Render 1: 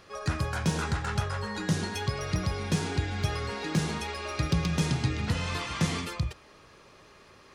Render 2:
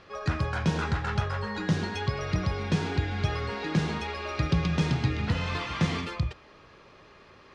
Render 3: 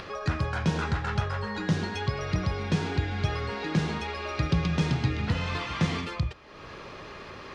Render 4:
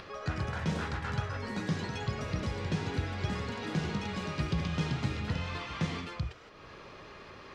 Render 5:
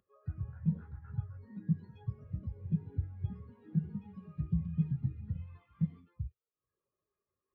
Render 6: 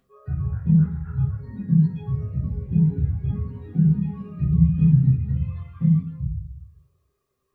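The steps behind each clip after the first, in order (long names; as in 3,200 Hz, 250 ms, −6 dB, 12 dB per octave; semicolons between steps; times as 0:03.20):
low-pass filter 4,100 Hz 12 dB per octave; level +1.5 dB
upward compression, threshold −31 dBFS
delay with pitch and tempo change per echo 144 ms, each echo +3 semitones, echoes 2, each echo −6 dB; level −6.5 dB
every bin expanded away from the loudest bin 2.5 to 1
convolution reverb RT60 0.35 s, pre-delay 3 ms, DRR −5 dB; level +6.5 dB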